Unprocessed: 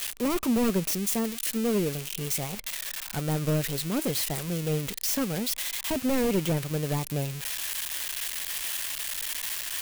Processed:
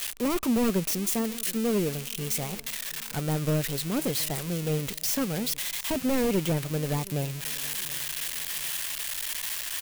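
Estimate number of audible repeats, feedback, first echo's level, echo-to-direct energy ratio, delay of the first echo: 2, 38%, -21.0 dB, -20.5 dB, 0.724 s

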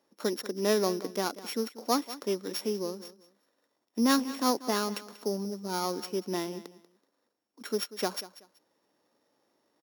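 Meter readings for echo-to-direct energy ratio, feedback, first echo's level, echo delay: -16.0 dB, 24%, -16.5 dB, 0.189 s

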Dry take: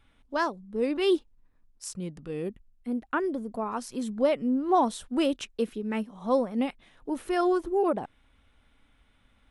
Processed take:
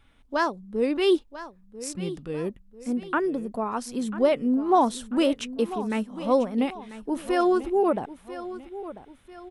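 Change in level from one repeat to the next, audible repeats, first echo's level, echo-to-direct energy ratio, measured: -7.0 dB, 2, -14.5 dB, -13.5 dB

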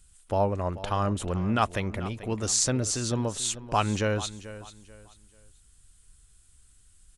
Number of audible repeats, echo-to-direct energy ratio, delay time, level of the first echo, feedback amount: 2, -14.5 dB, 0.438 s, -15.0 dB, 30%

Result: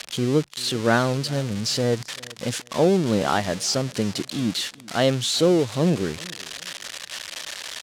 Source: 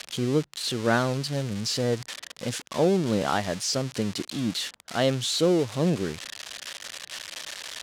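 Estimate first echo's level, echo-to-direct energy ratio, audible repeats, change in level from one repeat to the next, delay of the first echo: -22.5 dB, -22.0 dB, 2, -11.0 dB, 0.392 s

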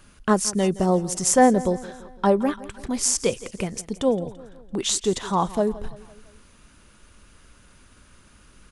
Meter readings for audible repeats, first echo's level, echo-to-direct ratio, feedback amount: 3, -18.0 dB, -16.5 dB, 52%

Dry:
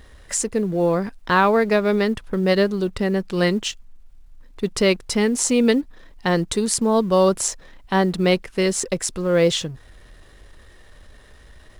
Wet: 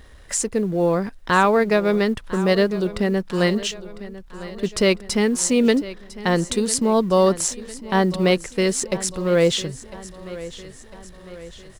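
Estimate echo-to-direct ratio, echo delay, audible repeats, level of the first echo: -15.0 dB, 1.002 s, 4, -16.5 dB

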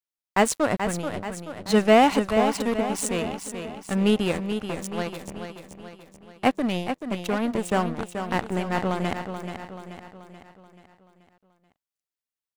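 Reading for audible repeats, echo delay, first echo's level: 5, 0.432 s, -8.0 dB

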